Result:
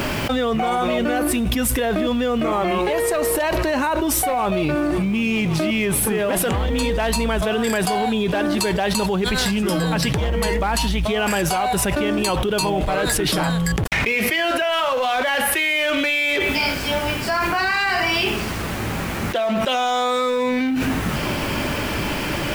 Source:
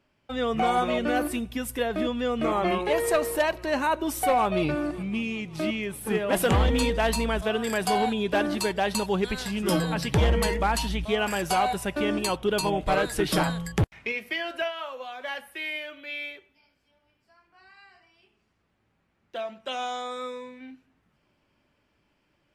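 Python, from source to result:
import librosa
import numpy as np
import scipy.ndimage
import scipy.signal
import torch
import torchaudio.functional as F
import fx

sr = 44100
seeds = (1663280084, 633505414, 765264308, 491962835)

y = fx.law_mismatch(x, sr, coded='mu')
y = fx.env_flatten(y, sr, amount_pct=100)
y = y * librosa.db_to_amplitude(-2.0)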